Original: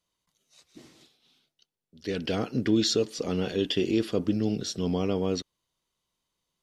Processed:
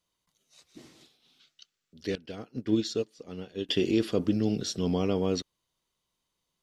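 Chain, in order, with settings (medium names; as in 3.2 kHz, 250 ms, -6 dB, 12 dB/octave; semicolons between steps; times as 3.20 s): 1.40–1.93 s: time-frequency box 1.1–8.1 kHz +11 dB; 2.15–3.69 s: upward expansion 2.5:1, over -33 dBFS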